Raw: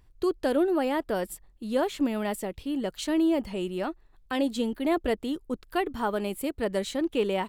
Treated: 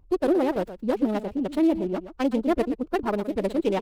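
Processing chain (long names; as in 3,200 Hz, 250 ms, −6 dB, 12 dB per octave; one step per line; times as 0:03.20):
adaptive Wiener filter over 25 samples
phase-vocoder stretch with locked phases 0.51×
single-tap delay 121 ms −12.5 dB
windowed peak hold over 5 samples
level +4.5 dB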